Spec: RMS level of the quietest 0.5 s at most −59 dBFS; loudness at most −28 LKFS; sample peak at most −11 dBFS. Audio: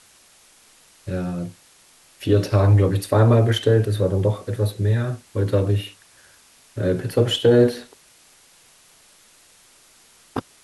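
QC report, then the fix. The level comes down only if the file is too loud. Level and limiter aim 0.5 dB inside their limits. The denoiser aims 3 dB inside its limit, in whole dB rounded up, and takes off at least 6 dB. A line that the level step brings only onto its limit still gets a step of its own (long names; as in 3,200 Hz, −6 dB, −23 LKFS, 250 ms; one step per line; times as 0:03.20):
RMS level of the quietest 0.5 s −53 dBFS: out of spec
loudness −20.0 LKFS: out of spec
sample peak −6.0 dBFS: out of spec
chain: level −8.5 dB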